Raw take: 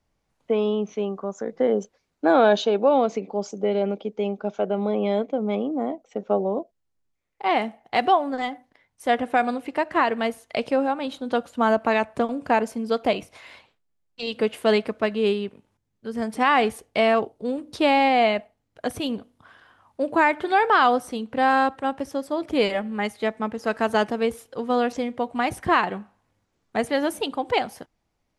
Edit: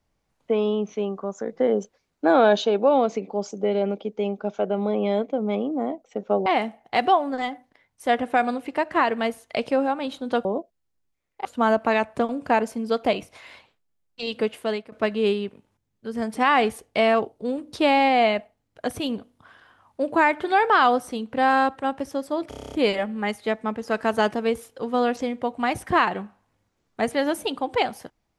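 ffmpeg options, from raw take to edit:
-filter_complex "[0:a]asplit=13[a][b][c][d][e][f][g][h][i][j][k][l][m];[a]atrim=end=6.462[n];[b]atrim=start=7.458:end=11.452[o];[c]atrim=start=6.458:end=7.462[p];[d]atrim=start=11.448:end=14.92,asetpts=PTS-STARTPTS,afade=t=out:st=2.902:d=0.57:silence=0.11885[q];[e]atrim=start=14.92:end=22.522,asetpts=PTS-STARTPTS,afade=t=in:d=0.004:c=hsin:silence=0.11885[r];[f]atrim=start=22.488:end=22.522[s];[g]atrim=start=22.488:end=22.522[t];[h]atrim=start=22.488:end=22.522[u];[i]atrim=start=22.488:end=22.522[v];[j]atrim=start=22.488:end=22.522[w];[k]atrim=start=22.488:end=22.522[x];[l]atrim=start=22.488:end=22.522[y];[m]atrim=start=22.488[z];[n][o]acrossfade=d=0.004:c1=hsin:c2=hsin[aa];[aa][p]acrossfade=d=0.004:c1=hsin:c2=hsin[ab];[q][r]concat=n=2:v=0:a=1[ac];[ab][ac]acrossfade=d=0.004:c1=hsin:c2=hsin[ad];[ad][s]acrossfade=d=0.004:c1=hsin:c2=hsin[ae];[ae][t]acrossfade=d=0.004:c1=hsin:c2=hsin[af];[af][u]acrossfade=d=0.004:c1=hsin:c2=hsin[ag];[ag][v]acrossfade=d=0.004:c1=hsin:c2=hsin[ah];[ah][w]acrossfade=d=0.004:c1=hsin:c2=hsin[ai];[ai][x]acrossfade=d=0.004:c1=hsin:c2=hsin[aj];[aj][y]acrossfade=d=0.004:c1=hsin:c2=hsin[ak];[ak][z]acrossfade=d=0.004:c1=hsin:c2=hsin"

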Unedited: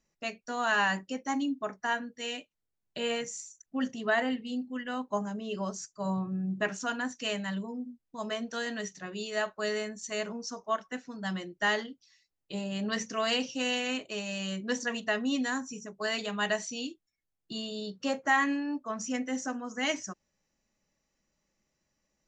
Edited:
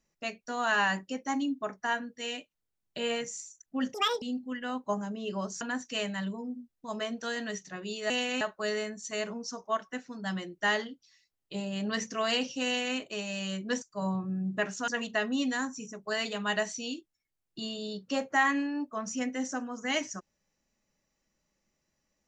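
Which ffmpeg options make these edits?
-filter_complex "[0:a]asplit=8[a][b][c][d][e][f][g][h];[a]atrim=end=3.944[i];[b]atrim=start=3.94:end=4.46,asetpts=PTS-STARTPTS,asetrate=82026,aresample=44100,atrim=end_sample=12329,asetpts=PTS-STARTPTS[j];[c]atrim=start=4.456:end=5.852[k];[d]atrim=start=6.908:end=9.402[l];[e]atrim=start=13.648:end=13.962[m];[f]atrim=start=9.398:end=14.812[n];[g]atrim=start=5.848:end=6.912[o];[h]atrim=start=14.808[p];[i][j]acrossfade=d=0.004:c1=hsin:c2=hsin[q];[q][k]acrossfade=d=0.004:c1=hsin:c2=hsin[r];[r][l]acrossfade=d=0.004:c1=hsin:c2=hsin[s];[s][m]acrossfade=d=0.004:c1=hsin:c2=hsin[t];[t][n]acrossfade=d=0.004:c1=hsin:c2=hsin[u];[u][o]acrossfade=d=0.004:c1=hsin:c2=hsin[v];[v][p]acrossfade=d=0.004:c1=hsin:c2=hsin"

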